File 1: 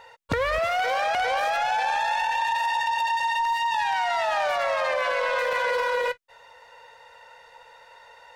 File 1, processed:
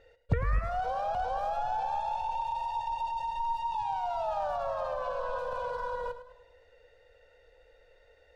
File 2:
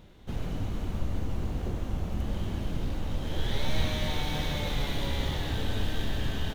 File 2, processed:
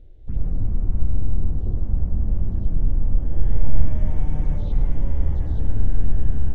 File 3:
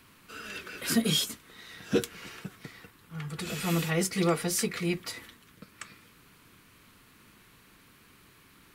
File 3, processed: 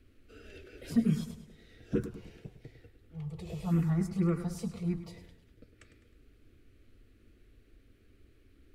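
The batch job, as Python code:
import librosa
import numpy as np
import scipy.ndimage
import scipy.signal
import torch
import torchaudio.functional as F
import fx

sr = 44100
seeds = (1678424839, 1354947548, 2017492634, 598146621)

y = fx.tilt_eq(x, sr, slope=-4.0)
y = fx.env_phaser(y, sr, low_hz=160.0, high_hz=3900.0, full_db=-7.5)
y = fx.echo_warbled(y, sr, ms=104, feedback_pct=45, rate_hz=2.8, cents=54, wet_db=-12.0)
y = y * 10.0 ** (-7.5 / 20.0)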